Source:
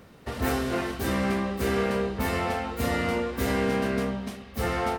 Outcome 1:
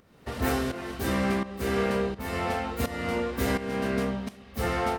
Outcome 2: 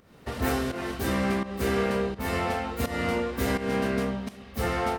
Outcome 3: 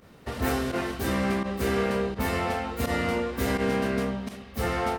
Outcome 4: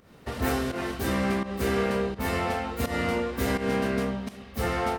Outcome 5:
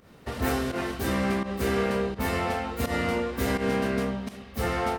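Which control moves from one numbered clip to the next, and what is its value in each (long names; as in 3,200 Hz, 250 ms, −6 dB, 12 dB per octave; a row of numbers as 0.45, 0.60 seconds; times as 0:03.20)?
fake sidechain pumping, release: 536, 261, 62, 178, 120 milliseconds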